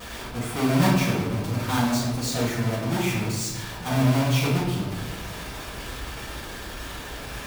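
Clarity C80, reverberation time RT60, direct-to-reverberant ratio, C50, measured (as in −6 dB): 4.5 dB, 1.2 s, −8.0 dB, 1.5 dB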